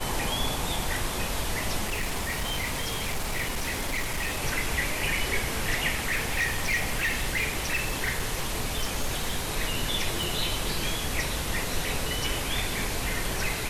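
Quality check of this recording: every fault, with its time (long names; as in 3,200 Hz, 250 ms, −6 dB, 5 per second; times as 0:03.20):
0:01.86–0:04.38: clipping −25 dBFS
0:06.04–0:09.49: clipping −22 dBFS
0:10.23: click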